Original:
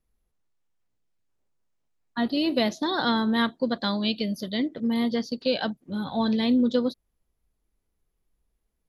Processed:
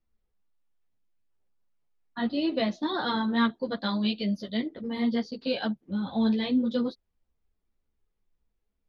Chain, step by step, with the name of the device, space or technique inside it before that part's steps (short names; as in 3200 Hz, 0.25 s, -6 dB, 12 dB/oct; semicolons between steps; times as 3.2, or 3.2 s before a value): 2.25–3.05 air absorption 52 m; string-machine ensemble chorus (ensemble effect; LPF 4600 Hz 12 dB/oct)